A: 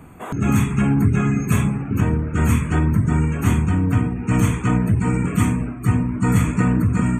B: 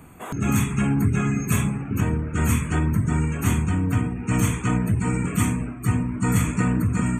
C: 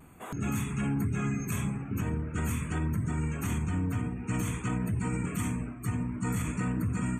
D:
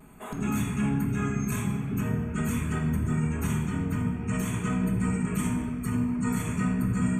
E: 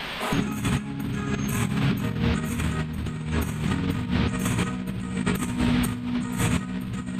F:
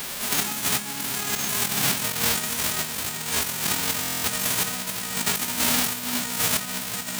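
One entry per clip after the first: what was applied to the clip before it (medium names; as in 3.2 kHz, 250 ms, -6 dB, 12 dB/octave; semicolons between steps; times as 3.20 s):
treble shelf 3 kHz +7.5 dB; trim -4 dB
peak limiter -15 dBFS, peak gain reduction 7 dB; vibrato 0.47 Hz 18 cents; trim -7 dB
reverberation RT60 2.0 s, pre-delay 5 ms, DRR 1 dB
band noise 430–3600 Hz -44 dBFS; compressor with a negative ratio -31 dBFS, ratio -0.5; trim +6 dB
formants flattened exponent 0.1; buffer glitch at 4.01 s, samples 1024, times 9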